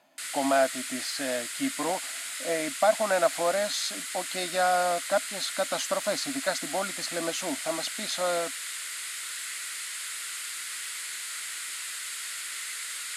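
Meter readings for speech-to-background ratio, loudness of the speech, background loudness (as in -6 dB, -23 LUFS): 4.0 dB, -29.5 LUFS, -33.5 LUFS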